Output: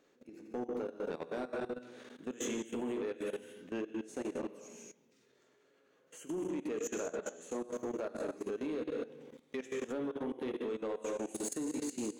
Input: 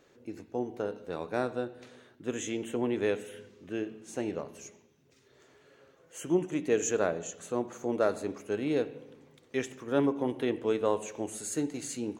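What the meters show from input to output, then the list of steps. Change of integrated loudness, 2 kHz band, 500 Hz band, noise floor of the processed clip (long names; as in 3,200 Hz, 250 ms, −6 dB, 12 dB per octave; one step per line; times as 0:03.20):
−7.0 dB, −7.5 dB, −7.0 dB, −70 dBFS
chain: reverb whose tail is shaped and stops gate 280 ms flat, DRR 2 dB
downward compressor 16 to 1, threshold −31 dBFS, peak gain reduction 13 dB
low shelf with overshoot 160 Hz −8.5 dB, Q 1.5
output level in coarse steps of 18 dB
soft clipping −32.5 dBFS, distortion −15 dB
level +2 dB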